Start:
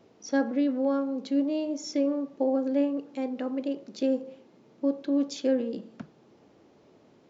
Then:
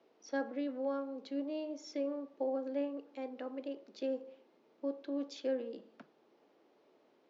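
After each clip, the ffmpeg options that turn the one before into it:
-filter_complex "[0:a]acrossover=split=280 5800:gain=0.0794 1 0.0708[a][b][c];[a][b][c]amix=inputs=3:normalize=0,volume=-7.5dB"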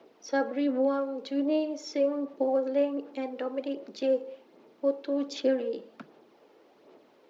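-af "aphaser=in_gain=1:out_gain=1:delay=2.3:decay=0.38:speed=1.3:type=sinusoidal,volume=9dB"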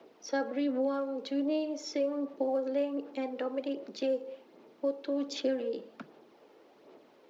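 -filter_complex "[0:a]acrossover=split=160|3000[a][b][c];[b]acompressor=threshold=-31dB:ratio=2[d];[a][d][c]amix=inputs=3:normalize=0"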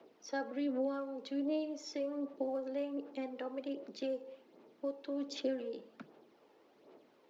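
-af "aphaser=in_gain=1:out_gain=1:delay=1.2:decay=0.21:speed=1.3:type=triangular,volume=-6dB"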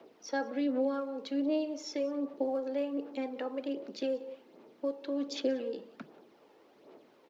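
-af "aecho=1:1:184:0.0794,volume=4.5dB"

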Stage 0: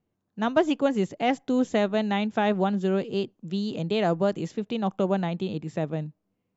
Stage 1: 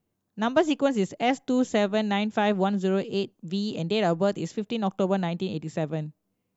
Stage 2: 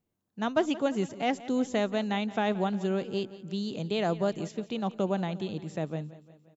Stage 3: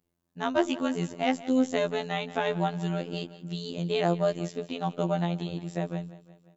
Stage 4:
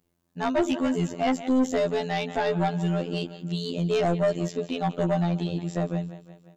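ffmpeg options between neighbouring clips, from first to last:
-af "highshelf=f=5.5k:g=8.5"
-af "aecho=1:1:175|350|525|700|875:0.133|0.0733|0.0403|0.0222|0.0122,volume=-4.5dB"
-af "afftfilt=real='hypot(re,im)*cos(PI*b)':imag='0':win_size=2048:overlap=0.75,volume=5dB"
-af "asoftclip=type=tanh:threshold=-23dB,volume=6dB"

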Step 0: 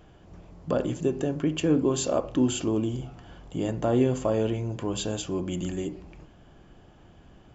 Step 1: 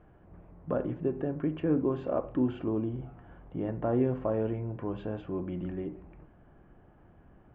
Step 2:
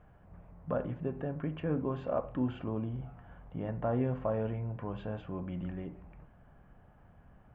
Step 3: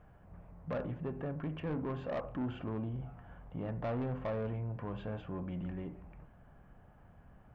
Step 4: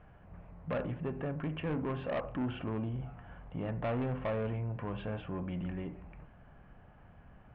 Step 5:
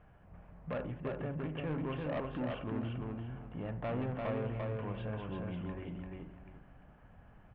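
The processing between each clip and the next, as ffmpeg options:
-af "lowpass=f=2k:w=0.5412,lowpass=f=2k:w=1.3066,volume=-4.5dB"
-af "equalizer=f=340:t=o:w=0.62:g=-11.5"
-af "asoftclip=type=tanh:threshold=-31.5dB"
-af "lowpass=f=2.9k:t=q:w=1.7,volume=2dB"
-af "aecho=1:1:344|688|1032:0.708|0.17|0.0408,volume=-3.5dB"

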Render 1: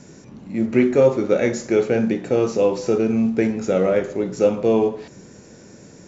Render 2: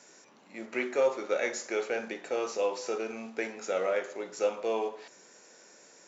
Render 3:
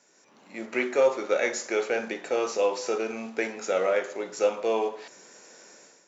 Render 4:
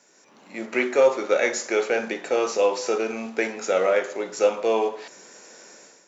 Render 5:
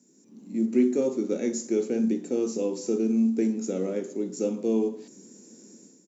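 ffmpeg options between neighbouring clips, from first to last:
-af "highpass=710,volume=-4.5dB"
-af "dynaudnorm=f=130:g=5:m=12dB,volume=-7dB"
-af "highpass=91,volume=4dB"
-af "firequalizer=gain_entry='entry(110,0);entry(220,13);entry(600,-17);entry(1400,-23);entry(7400,-2)':delay=0.05:min_phase=1"

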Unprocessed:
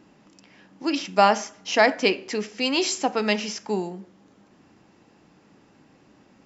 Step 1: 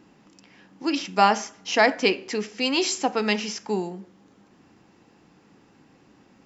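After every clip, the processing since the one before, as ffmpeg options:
-af "bandreject=f=610:w=12"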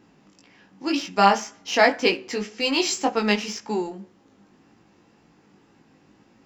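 -filter_complex "[0:a]asplit=2[a][b];[b]aeval=exprs='sgn(val(0))*max(abs(val(0))-0.0211,0)':c=same,volume=-9.5dB[c];[a][c]amix=inputs=2:normalize=0,flanger=delay=17.5:depth=2.8:speed=1.9,volume=2dB"

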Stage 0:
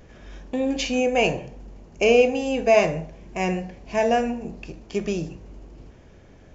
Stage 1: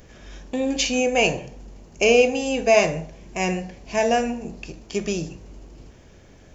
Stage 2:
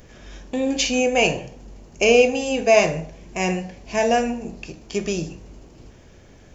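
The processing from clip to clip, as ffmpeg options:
-af "highshelf=f=4.1k:g=11"
-af "flanger=delay=8.2:depth=3.8:regen=-81:speed=0.48:shape=sinusoidal,volume=5.5dB"

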